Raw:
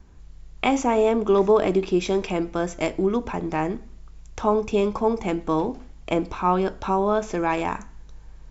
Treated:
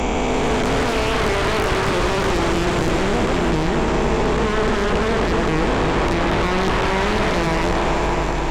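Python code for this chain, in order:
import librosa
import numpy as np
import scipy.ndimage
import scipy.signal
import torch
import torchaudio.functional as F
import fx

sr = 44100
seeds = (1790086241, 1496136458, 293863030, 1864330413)

p1 = fx.spec_blur(x, sr, span_ms=1150.0)
p2 = fx.low_shelf(p1, sr, hz=240.0, db=-6.0)
p3 = fx.fold_sine(p2, sr, drive_db=18, ceiling_db=-13.5)
p4 = p2 + (p3 * 10.0 ** (-4.0 / 20.0))
p5 = fx.cheby_harmonics(p4, sr, harmonics=(4,), levels_db=(-16,), full_scale_db=-11.0)
p6 = fx.low_shelf(p5, sr, hz=84.0, db=11.5)
p7 = p6 + fx.echo_alternate(p6, sr, ms=300, hz=1100.0, feedback_pct=69, wet_db=-7.0, dry=0)
p8 = fx.band_squash(p7, sr, depth_pct=70)
y = p8 * 10.0 ** (-2.0 / 20.0)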